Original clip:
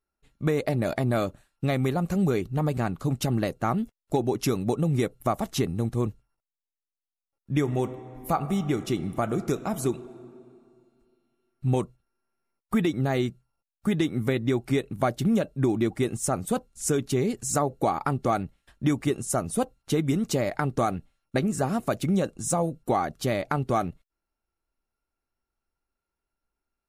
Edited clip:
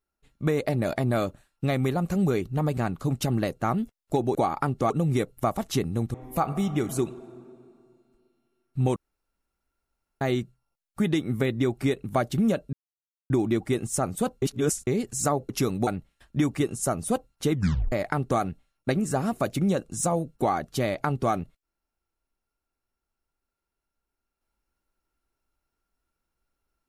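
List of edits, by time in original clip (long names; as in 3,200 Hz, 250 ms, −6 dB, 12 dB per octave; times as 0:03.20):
0:04.35–0:04.73: swap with 0:17.79–0:18.34
0:05.97–0:08.07: remove
0:08.82–0:09.76: remove
0:11.83–0:13.08: fill with room tone
0:15.60: splice in silence 0.57 s
0:16.72–0:17.17: reverse
0:19.99: tape stop 0.40 s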